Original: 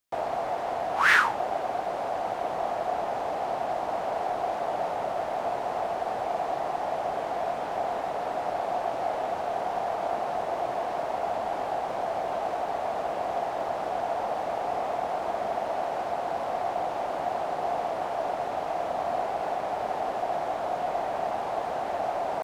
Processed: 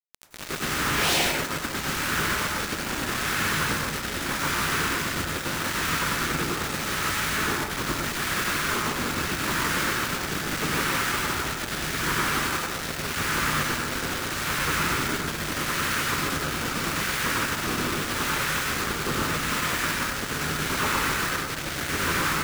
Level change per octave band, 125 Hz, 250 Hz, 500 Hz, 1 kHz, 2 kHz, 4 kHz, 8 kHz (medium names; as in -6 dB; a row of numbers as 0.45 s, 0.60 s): +16.5 dB, +11.0 dB, -5.5 dB, -2.5 dB, +7.5 dB, +15.5 dB, +21.5 dB